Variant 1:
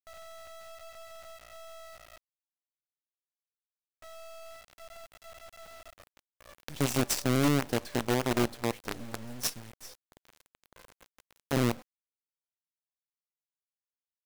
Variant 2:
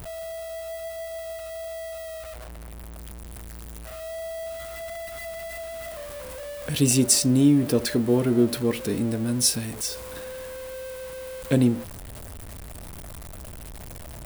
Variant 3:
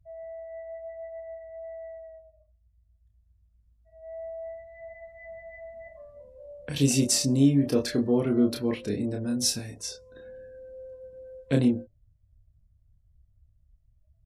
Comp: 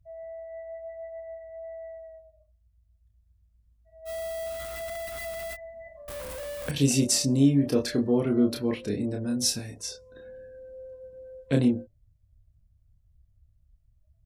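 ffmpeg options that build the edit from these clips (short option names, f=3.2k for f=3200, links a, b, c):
-filter_complex "[1:a]asplit=2[a][b];[2:a]asplit=3[c][d][e];[c]atrim=end=4.09[f];[a]atrim=start=4.05:end=5.57[g];[d]atrim=start=5.53:end=6.082[h];[b]atrim=start=6.078:end=6.712[i];[e]atrim=start=6.708[j];[f][g]acrossfade=d=0.04:c1=tri:c2=tri[k];[k][h]acrossfade=d=0.04:c1=tri:c2=tri[l];[l][i]acrossfade=d=0.004:c1=hsin:c2=hsin[m];[m][j]acrossfade=d=0.004:c1=hsin:c2=hsin"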